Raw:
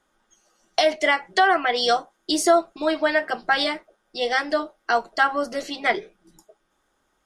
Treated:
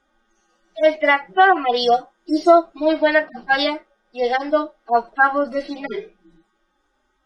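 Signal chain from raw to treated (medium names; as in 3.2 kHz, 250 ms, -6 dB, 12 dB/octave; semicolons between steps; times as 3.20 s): harmonic-percussive separation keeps harmonic; distance through air 85 m; trim +5.5 dB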